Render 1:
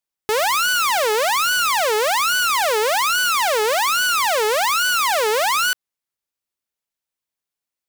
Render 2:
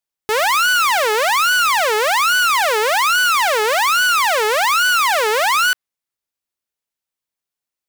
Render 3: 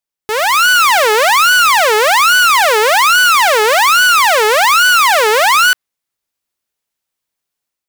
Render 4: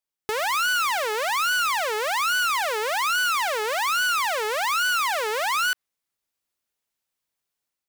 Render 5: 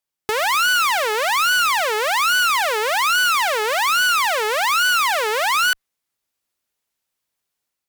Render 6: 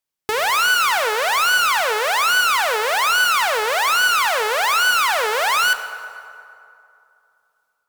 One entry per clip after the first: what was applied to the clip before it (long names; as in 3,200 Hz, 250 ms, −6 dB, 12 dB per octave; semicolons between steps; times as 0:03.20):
dynamic equaliser 1,700 Hz, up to +5 dB, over −30 dBFS, Q 0.72
automatic gain control gain up to 7.5 dB
brickwall limiter −14 dBFS, peak gain reduction 11 dB; level −4.5 dB
harmonic generator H 3 −23 dB, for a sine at −18 dBFS; level +6 dB
convolution reverb RT60 2.7 s, pre-delay 5 ms, DRR 9.5 dB